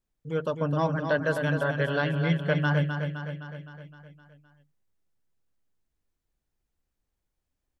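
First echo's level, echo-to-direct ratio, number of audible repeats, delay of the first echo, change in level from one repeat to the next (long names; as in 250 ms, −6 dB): −7.0 dB, −5.0 dB, 6, 258 ms, −4.5 dB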